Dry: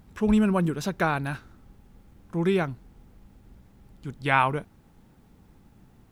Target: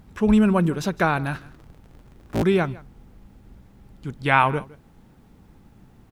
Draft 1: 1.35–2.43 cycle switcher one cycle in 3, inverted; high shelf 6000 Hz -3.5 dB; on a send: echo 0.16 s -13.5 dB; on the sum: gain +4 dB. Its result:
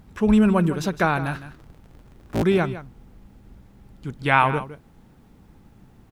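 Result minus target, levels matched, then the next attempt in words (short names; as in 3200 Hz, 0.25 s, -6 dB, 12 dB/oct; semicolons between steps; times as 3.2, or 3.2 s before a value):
echo-to-direct +7.5 dB
1.35–2.43 cycle switcher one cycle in 3, inverted; high shelf 6000 Hz -3.5 dB; on a send: echo 0.16 s -21 dB; on the sum: gain +4 dB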